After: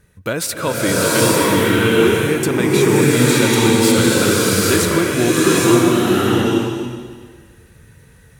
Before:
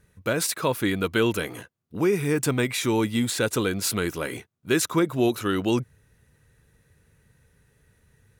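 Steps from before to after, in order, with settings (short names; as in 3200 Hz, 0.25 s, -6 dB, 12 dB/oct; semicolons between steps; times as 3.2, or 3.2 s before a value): in parallel at -1.5 dB: compressor, threshold -31 dBFS, peak gain reduction 13 dB; on the sum: bloom reverb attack 0.83 s, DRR -7.5 dB; gain +1 dB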